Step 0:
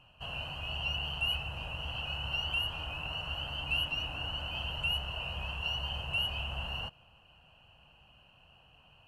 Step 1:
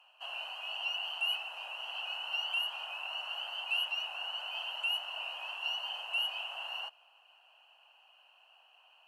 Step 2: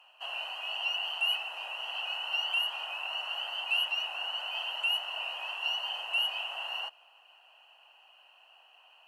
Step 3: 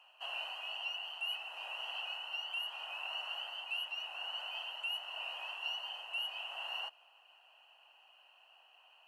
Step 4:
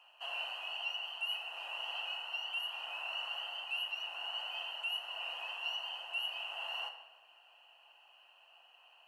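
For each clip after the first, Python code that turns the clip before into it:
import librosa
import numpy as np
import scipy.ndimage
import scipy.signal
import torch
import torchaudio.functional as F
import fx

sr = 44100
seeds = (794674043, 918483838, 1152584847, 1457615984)

y1 = scipy.signal.sosfilt(scipy.signal.cheby1(3, 1.0, 720.0, 'highpass', fs=sr, output='sos'), x)
y2 = fx.small_body(y1, sr, hz=(350.0, 1900.0), ring_ms=35, db=9)
y2 = y2 * 10.0 ** (3.5 / 20.0)
y3 = fx.rider(y2, sr, range_db=4, speed_s=0.5)
y3 = y3 * 10.0 ** (-7.5 / 20.0)
y4 = fx.room_shoebox(y3, sr, seeds[0], volume_m3=840.0, walls='mixed', distance_m=0.81)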